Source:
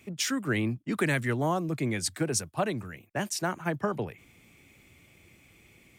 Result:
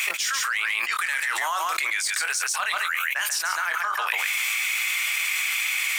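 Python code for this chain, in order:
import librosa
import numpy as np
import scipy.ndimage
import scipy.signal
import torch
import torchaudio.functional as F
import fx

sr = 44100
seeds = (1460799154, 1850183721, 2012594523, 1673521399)

p1 = scipy.signal.sosfilt(scipy.signal.butter(4, 1200.0, 'highpass', fs=sr, output='sos'), x)
p2 = 10.0 ** (-30.5 / 20.0) * (np.abs((p1 / 10.0 ** (-30.5 / 20.0) + 3.0) % 4.0 - 2.0) - 1.0)
p3 = p1 + (p2 * 10.0 ** (-11.5 / 20.0))
p4 = fx.doubler(p3, sr, ms=23.0, db=-12.5)
p5 = p4 + 10.0 ** (-10.0 / 20.0) * np.pad(p4, (int(139 * sr / 1000.0), 0))[:len(p4)]
y = fx.env_flatten(p5, sr, amount_pct=100)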